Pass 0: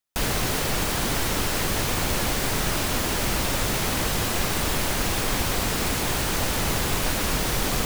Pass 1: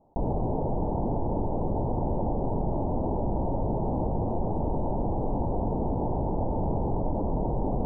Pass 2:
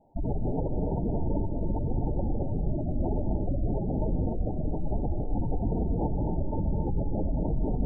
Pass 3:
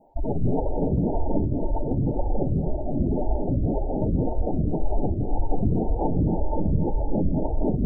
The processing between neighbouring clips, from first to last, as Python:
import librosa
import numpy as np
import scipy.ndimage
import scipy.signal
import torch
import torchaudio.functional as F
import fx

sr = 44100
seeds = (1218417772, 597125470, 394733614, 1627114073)

y1 = scipy.signal.sosfilt(scipy.signal.cheby1(6, 1.0, 920.0, 'lowpass', fs=sr, output='sos'), x)
y1 = fx.env_flatten(y1, sr, amount_pct=50)
y1 = y1 * librosa.db_to_amplitude(-1.5)
y2 = fx.spec_gate(y1, sr, threshold_db=-10, keep='strong')
y2 = fx.rev_gated(y2, sr, seeds[0], gate_ms=310, shape='rising', drr_db=2.5)
y3 = fx.echo_feedback(y2, sr, ms=164, feedback_pct=55, wet_db=-8)
y3 = fx.stagger_phaser(y3, sr, hz=1.9)
y3 = y3 * librosa.db_to_amplitude(7.5)